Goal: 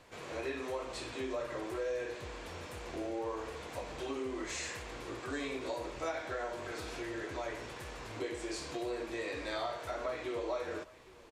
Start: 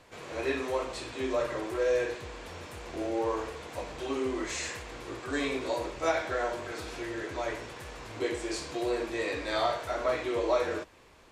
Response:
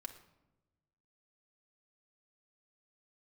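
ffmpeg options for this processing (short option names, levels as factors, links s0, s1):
-filter_complex "[0:a]acompressor=threshold=0.0178:ratio=2.5,asplit=2[s0][s1];[s1]aecho=0:1:812:0.0794[s2];[s0][s2]amix=inputs=2:normalize=0,volume=0.794"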